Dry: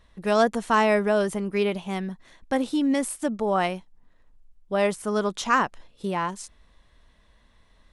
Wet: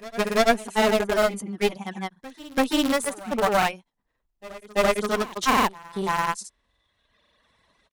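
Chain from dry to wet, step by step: high-pass 270 Hz 6 dB/octave; reverb removal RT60 1.3 s; in parallel at -5.5 dB: bit crusher 4-bit; on the sum: granulator 100 ms, pitch spread up and down by 0 st; one-sided clip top -29 dBFS; on a send: reverse echo 337 ms -19.5 dB; on the sum: trim +5 dB

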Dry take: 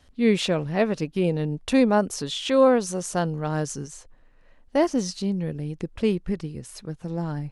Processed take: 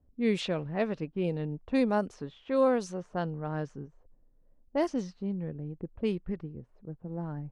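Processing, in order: level-controlled noise filter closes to 420 Hz, open at -15 dBFS; trim -7.5 dB

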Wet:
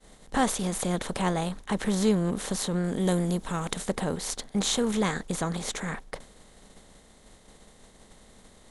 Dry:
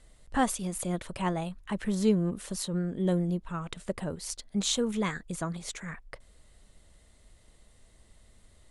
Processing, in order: spectral levelling over time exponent 0.6; expander -36 dBFS; 2.84–3.88 s: treble shelf 7 kHz +9.5 dB

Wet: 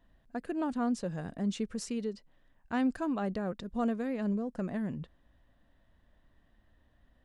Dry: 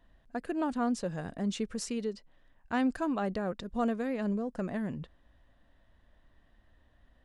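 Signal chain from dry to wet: peaking EQ 180 Hz +3.5 dB 1.9 oct; trim -3 dB

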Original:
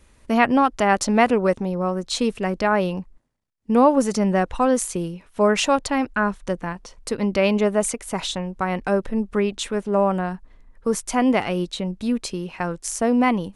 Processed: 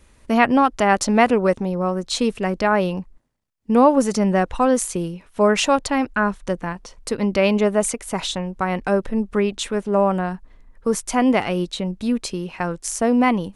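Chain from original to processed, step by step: trim +1.5 dB

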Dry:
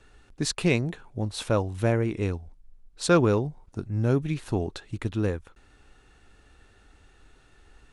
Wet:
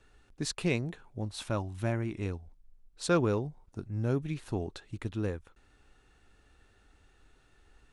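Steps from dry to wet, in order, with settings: 1.32–2.26 s: peaking EQ 470 Hz -14 dB 0.23 oct; trim -6.5 dB

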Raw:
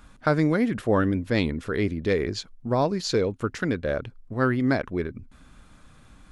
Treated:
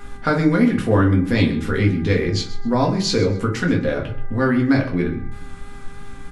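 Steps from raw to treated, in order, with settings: peaking EQ 580 Hz -6.5 dB 0.83 oct; in parallel at +2.5 dB: compression, threshold -34 dBFS, peak gain reduction 14.5 dB; on the sum: simulated room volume 130 m³, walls furnished, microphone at 1.8 m; mains buzz 400 Hz, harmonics 5, -46 dBFS -2 dB/octave; vibrato 3.2 Hz 18 cents; on a send: feedback delay 129 ms, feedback 24%, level -16 dB

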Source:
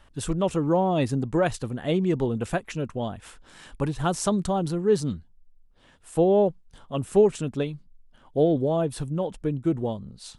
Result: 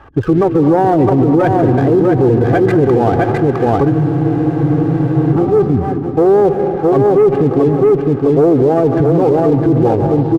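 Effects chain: high-pass 90 Hz 12 dB/octave; spectral gate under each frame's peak -20 dB strong; low-pass 1.6 kHz 24 dB/octave; comb 2.5 ms, depth 65%; waveshaping leveller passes 1; reverse; compression 10:1, threshold -23 dBFS, peak gain reduction 14 dB; reverse; feedback delay 660 ms, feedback 24%, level -4.5 dB; on a send at -11 dB: reverberation RT60 2.2 s, pre-delay 122 ms; on the sum: loudness maximiser +24.5 dB; spectral freeze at 3.93 s, 1.41 s; sliding maximum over 5 samples; trim -3 dB

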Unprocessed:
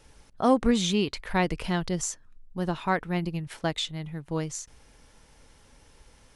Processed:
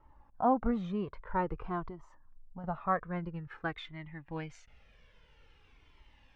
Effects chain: low-pass sweep 1.1 kHz -> 2.8 kHz, 2.71–4.88 s; 1.85–2.64 s: compression 6:1, threshold -32 dBFS, peak gain reduction 9.5 dB; Shepard-style flanger falling 0.5 Hz; trim -4 dB

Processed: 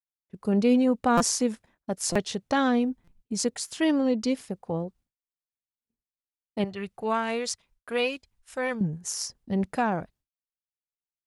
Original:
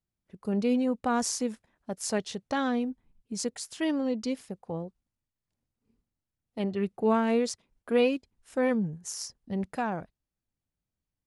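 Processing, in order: expander -56 dBFS; 6.64–8.81 s: peaking EQ 280 Hz -13.5 dB 2.2 oct; buffer glitch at 1.17/2.12/3.04/3.67 s, samples 256, times 5; trim +5 dB

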